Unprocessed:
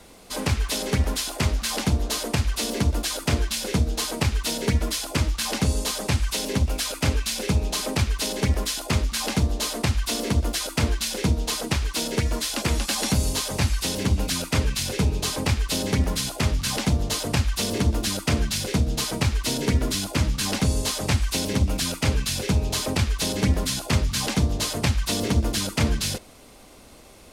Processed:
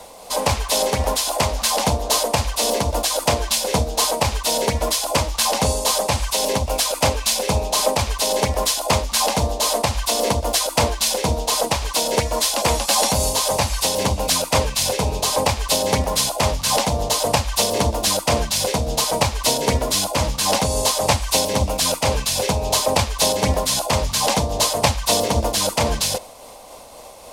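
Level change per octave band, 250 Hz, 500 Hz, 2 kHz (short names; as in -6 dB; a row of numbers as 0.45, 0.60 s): -1.0, +10.0, +3.5 dB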